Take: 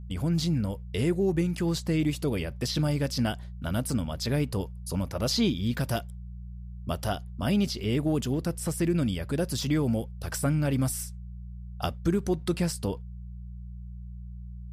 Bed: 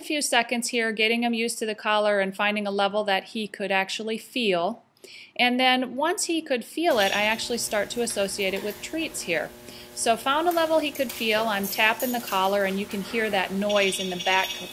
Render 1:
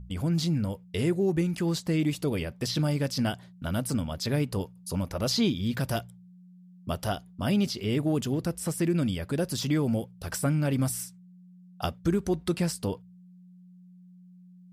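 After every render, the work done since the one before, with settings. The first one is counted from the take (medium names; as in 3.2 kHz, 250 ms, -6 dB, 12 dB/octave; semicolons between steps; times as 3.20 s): de-hum 60 Hz, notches 2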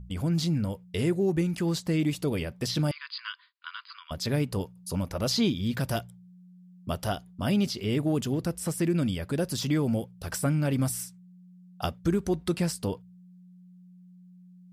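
2.91–4.11 s: brick-wall FIR band-pass 960–5000 Hz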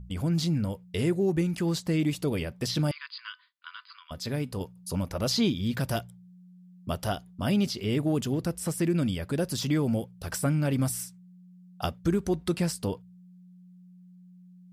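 3.06–4.61 s: feedback comb 250 Hz, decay 0.22 s, mix 40%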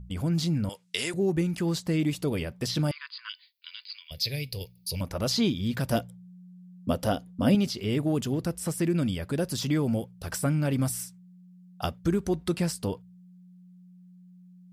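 0.69–1.14 s: frequency weighting ITU-R 468; 3.29–5.01 s: FFT filter 140 Hz 0 dB, 230 Hz -16 dB, 490 Hz -3 dB, 1.3 kHz -21 dB, 2.3 kHz +8 dB, 3.2 kHz +5 dB, 4.6 kHz +13 dB, 7.6 kHz -6 dB, 14 kHz +13 dB; 5.92–7.55 s: small resonant body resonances 260/500 Hz, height 11 dB, ringing for 35 ms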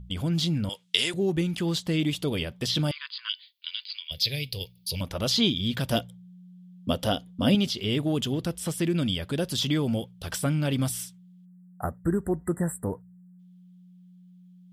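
11.45–13.39 s: spectral selection erased 2–7.3 kHz; peaking EQ 3.3 kHz +12 dB 0.51 oct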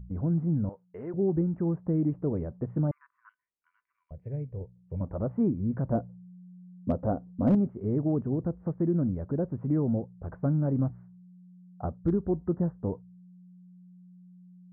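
Gaussian low-pass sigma 8.7 samples; hard clipper -17 dBFS, distortion -29 dB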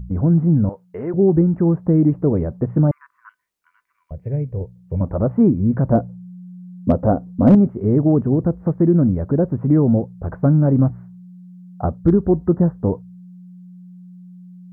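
trim +12 dB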